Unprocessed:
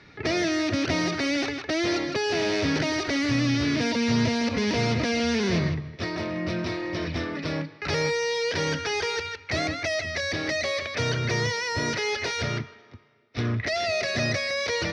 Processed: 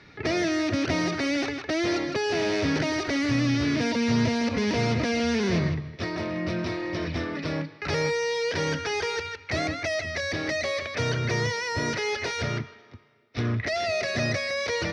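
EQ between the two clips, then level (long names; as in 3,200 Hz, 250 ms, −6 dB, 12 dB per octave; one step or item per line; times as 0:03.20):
dynamic equaliser 4,100 Hz, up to −3 dB, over −39 dBFS, Q 0.81
0.0 dB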